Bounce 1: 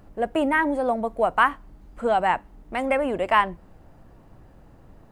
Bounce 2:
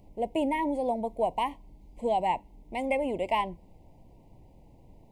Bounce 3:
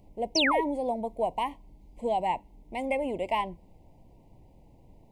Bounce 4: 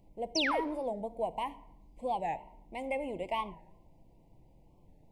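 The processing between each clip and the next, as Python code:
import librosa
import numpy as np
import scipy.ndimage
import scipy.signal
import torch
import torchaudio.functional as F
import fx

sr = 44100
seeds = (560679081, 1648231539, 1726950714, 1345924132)

y1 = scipy.signal.sosfilt(scipy.signal.ellip(3, 1.0, 50, [970.0, 2100.0], 'bandstop', fs=sr, output='sos'), x)
y1 = y1 * 10.0 ** (-4.5 / 20.0)
y2 = fx.spec_paint(y1, sr, seeds[0], shape='fall', start_s=0.35, length_s=0.26, low_hz=380.0, high_hz=6400.0, level_db=-24.0)
y2 = y2 * 10.0 ** (-1.0 / 20.0)
y3 = fx.room_shoebox(y2, sr, seeds[1], volume_m3=3300.0, walls='furnished', distance_m=0.7)
y3 = fx.record_warp(y3, sr, rpm=45.0, depth_cents=160.0)
y3 = y3 * 10.0 ** (-6.0 / 20.0)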